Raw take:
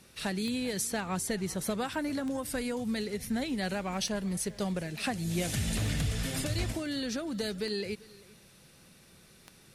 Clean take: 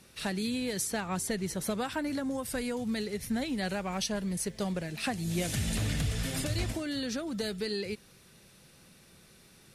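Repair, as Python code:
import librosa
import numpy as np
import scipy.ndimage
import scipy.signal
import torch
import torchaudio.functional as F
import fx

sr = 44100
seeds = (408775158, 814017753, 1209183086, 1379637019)

y = fx.fix_declick_ar(x, sr, threshold=10.0)
y = fx.fix_echo_inverse(y, sr, delay_ms=392, level_db=-21.5)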